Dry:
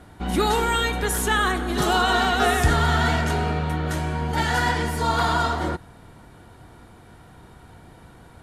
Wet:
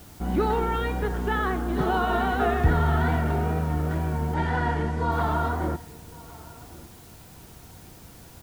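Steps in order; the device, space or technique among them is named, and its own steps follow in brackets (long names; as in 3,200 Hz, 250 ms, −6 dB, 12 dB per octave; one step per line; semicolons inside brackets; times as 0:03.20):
cassette deck with a dirty head (head-to-tape spacing loss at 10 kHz 44 dB; tape wow and flutter; white noise bed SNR 26 dB)
0:04.34–0:05.12: low-pass filter 7,700 Hz 12 dB per octave
slap from a distant wall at 190 metres, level −20 dB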